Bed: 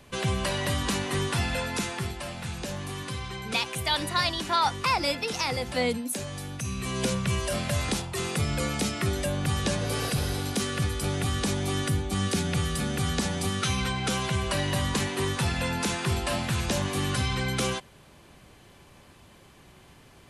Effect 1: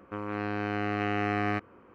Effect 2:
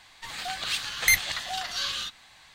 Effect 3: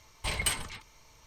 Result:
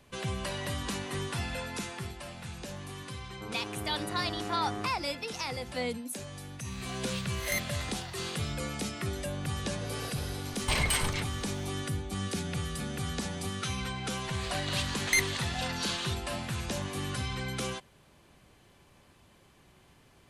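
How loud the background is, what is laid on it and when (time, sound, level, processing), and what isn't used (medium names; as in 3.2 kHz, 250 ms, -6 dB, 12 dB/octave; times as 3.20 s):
bed -7 dB
3.29 s: add 1 -7.5 dB + low-pass 1.2 kHz
6.44 s: add 2 -13.5 dB + reverse spectral sustain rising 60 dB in 0.40 s
10.44 s: add 3 -16.5 dB + loudness maximiser +24.5 dB
14.05 s: add 2 -4.5 dB + Chebyshev low-pass 9.6 kHz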